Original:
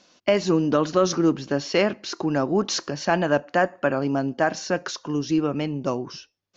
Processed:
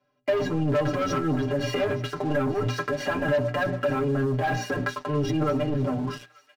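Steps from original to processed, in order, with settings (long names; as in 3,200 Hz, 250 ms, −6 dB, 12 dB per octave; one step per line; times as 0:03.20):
sub-octave generator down 1 octave, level +2 dB
parametric band 1,000 Hz −5 dB 0.32 octaves
mains-hum notches 60/120/180/240/300/360 Hz
transient designer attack −4 dB, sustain +11 dB
three-way crossover with the lows and the highs turned down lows −12 dB, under 160 Hz, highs −23 dB, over 2,400 Hz
stiff-string resonator 120 Hz, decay 0.24 s, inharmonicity 0.03
leveller curve on the samples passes 3
downward compressor, threshold −28 dBFS, peak gain reduction 8.5 dB
comb filter 6.7 ms, depth 74%
delay with a high-pass on its return 887 ms, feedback 40%, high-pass 1,900 Hz, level −17.5 dB
level +2.5 dB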